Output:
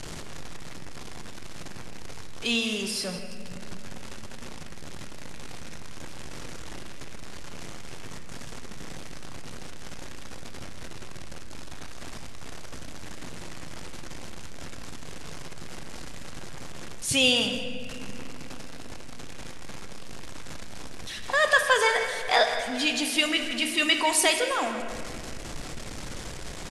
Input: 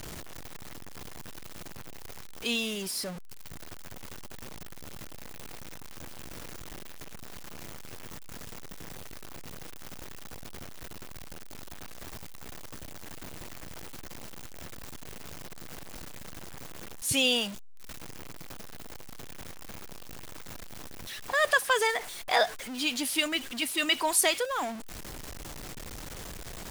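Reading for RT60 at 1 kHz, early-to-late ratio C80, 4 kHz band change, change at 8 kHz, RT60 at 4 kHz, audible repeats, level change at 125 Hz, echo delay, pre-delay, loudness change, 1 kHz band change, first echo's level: 2.3 s, 6.5 dB, +4.5 dB, +1.5 dB, 1.7 s, 2, +4.5 dB, 162 ms, 4 ms, +4.0 dB, +4.0 dB, -13.0 dB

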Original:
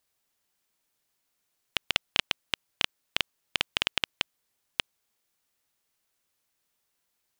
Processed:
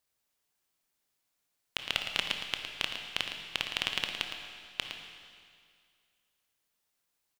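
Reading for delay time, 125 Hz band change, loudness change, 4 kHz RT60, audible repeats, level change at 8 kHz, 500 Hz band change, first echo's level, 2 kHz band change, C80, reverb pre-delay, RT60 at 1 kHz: 112 ms, -2.5 dB, -3.0 dB, 2.1 s, 1, -2.5 dB, -3.0 dB, -9.0 dB, -3.0 dB, 4.5 dB, 18 ms, 2.1 s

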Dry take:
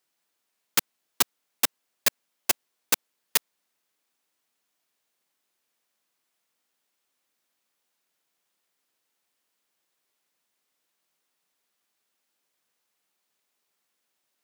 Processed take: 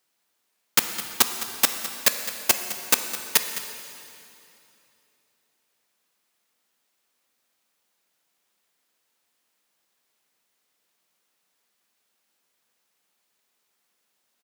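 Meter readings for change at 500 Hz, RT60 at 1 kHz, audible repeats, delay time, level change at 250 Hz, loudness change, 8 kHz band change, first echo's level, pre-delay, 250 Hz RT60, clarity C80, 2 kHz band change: +4.5 dB, 2.8 s, 1, 210 ms, +4.5 dB, +4.0 dB, +4.5 dB, -14.0 dB, 3 ms, 3.2 s, 7.5 dB, +4.5 dB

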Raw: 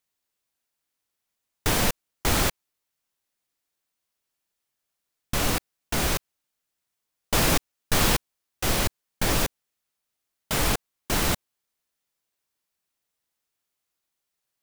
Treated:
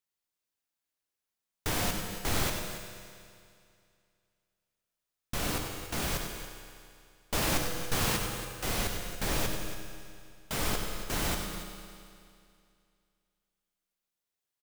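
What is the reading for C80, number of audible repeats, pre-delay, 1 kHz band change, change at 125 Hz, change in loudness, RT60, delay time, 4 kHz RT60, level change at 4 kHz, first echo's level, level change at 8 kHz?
3.5 dB, 2, 13 ms, -6.5 dB, -6.5 dB, -7.0 dB, 2.4 s, 97 ms, 2.3 s, -6.5 dB, -9.0 dB, -6.5 dB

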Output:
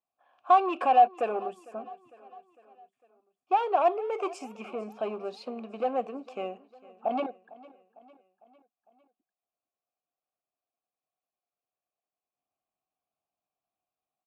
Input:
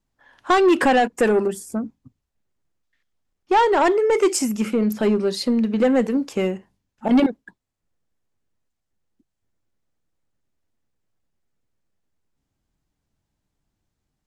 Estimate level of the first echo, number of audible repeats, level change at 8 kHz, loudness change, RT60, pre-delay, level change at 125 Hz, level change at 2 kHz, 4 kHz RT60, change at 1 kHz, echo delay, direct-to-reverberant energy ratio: -21.0 dB, 3, under -25 dB, -8.5 dB, no reverb, no reverb, under -20 dB, -16.0 dB, no reverb, -2.5 dB, 453 ms, no reverb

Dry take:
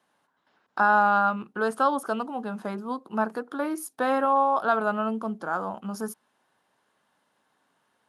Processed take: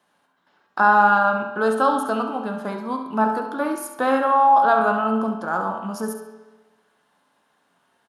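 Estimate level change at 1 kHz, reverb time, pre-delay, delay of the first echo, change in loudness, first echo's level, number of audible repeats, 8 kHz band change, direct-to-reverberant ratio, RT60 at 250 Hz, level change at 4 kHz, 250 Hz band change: +6.5 dB, 1.2 s, 5 ms, 68 ms, +5.5 dB, -9.5 dB, 1, +4.0 dB, 3.5 dB, 1.2 s, +5.0 dB, +5.5 dB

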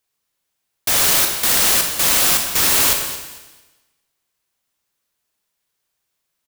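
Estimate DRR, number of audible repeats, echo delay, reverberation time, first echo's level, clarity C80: 3.5 dB, 2, 225 ms, 1.2 s, -14.0 dB, 6.5 dB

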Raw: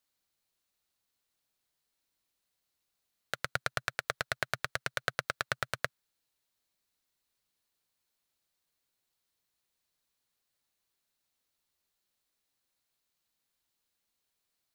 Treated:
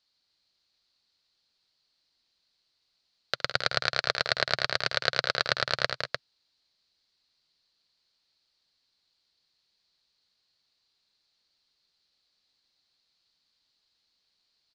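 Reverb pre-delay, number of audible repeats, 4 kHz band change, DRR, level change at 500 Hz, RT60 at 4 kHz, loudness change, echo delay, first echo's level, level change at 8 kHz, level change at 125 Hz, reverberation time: no reverb, 4, +13.5 dB, no reverb, +8.5 dB, no reverb, +8.0 dB, 66 ms, -17.5 dB, +1.5 dB, +4.0 dB, no reverb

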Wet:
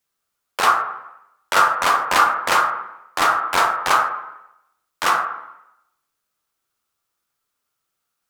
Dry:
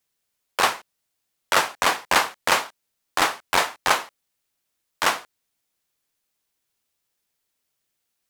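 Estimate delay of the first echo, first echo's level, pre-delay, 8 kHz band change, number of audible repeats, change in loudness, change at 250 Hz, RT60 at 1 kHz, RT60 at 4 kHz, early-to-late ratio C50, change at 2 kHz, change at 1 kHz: no echo, no echo, 23 ms, -1.0 dB, no echo, +4.0 dB, +0.5 dB, 0.85 s, 0.80 s, 2.0 dB, +2.5 dB, +7.0 dB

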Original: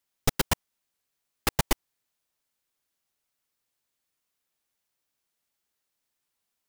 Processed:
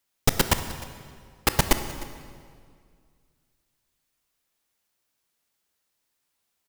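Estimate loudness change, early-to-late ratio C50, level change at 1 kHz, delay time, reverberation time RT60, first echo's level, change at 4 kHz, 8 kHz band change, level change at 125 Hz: +4.0 dB, 9.5 dB, +4.5 dB, 305 ms, 2.0 s, -19.5 dB, +4.5 dB, +4.5 dB, +4.5 dB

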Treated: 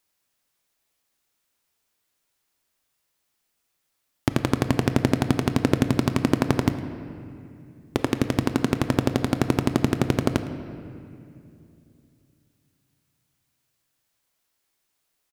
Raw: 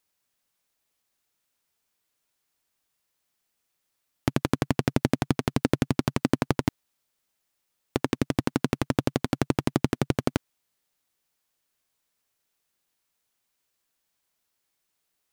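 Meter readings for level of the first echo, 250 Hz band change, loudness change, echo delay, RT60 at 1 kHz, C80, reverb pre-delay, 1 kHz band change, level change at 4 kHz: -20.0 dB, +4.0 dB, +3.5 dB, 109 ms, 2.4 s, 10.5 dB, 3 ms, +3.0 dB, +3.0 dB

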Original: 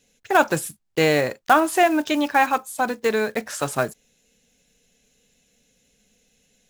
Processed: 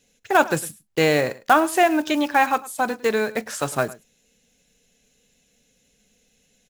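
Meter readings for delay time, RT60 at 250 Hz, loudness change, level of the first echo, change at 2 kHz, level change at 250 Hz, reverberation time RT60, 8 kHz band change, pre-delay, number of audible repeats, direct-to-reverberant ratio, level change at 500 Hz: 105 ms, no reverb, 0.0 dB, -19.5 dB, 0.0 dB, 0.0 dB, no reverb, 0.0 dB, no reverb, 1, no reverb, 0.0 dB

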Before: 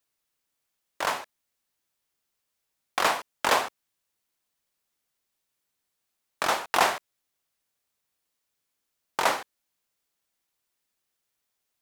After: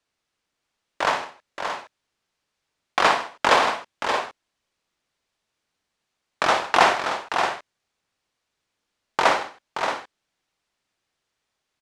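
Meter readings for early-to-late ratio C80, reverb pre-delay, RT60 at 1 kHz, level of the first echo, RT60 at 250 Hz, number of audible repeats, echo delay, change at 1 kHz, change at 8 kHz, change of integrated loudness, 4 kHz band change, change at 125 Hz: no reverb, no reverb, no reverb, -9.0 dB, no reverb, 4, 60 ms, +7.0 dB, 0.0 dB, +4.5 dB, +5.0 dB, +7.5 dB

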